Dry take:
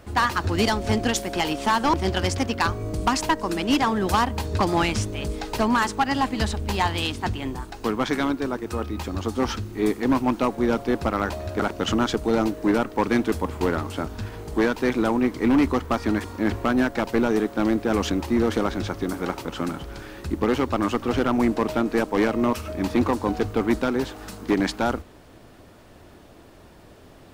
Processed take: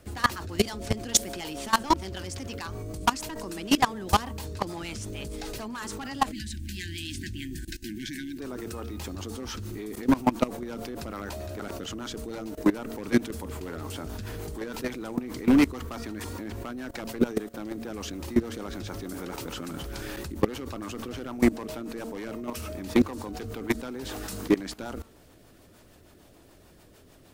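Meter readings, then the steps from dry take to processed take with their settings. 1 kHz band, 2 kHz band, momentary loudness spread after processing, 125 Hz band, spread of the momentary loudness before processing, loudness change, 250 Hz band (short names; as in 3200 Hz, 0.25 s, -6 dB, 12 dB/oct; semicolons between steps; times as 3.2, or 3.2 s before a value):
-7.0 dB, -7.5 dB, 12 LU, -7.0 dB, 8 LU, -6.5 dB, -6.0 dB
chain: de-hum 226.7 Hz, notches 6; spectral delete 6.32–8.39, 380–1500 Hz; high shelf 5900 Hz +11 dB; in parallel at -1 dB: compressor 10:1, threshold -33 dBFS, peak gain reduction 17.5 dB; on the sum: rotary speaker horn 6.7 Hz; level quantiser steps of 19 dB; gain +2 dB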